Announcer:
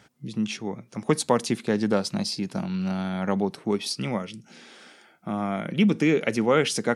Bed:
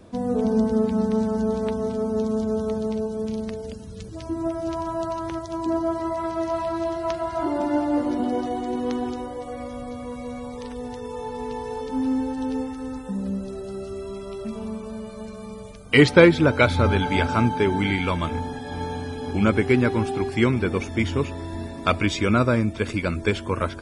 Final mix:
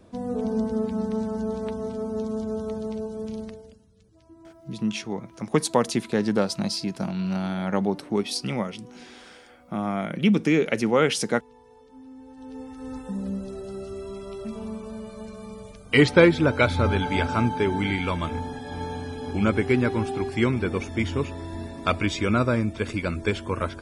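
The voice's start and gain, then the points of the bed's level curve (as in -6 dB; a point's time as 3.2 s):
4.45 s, +0.5 dB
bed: 3.42 s -5 dB
3.91 s -22 dB
12.14 s -22 dB
12.95 s -2.5 dB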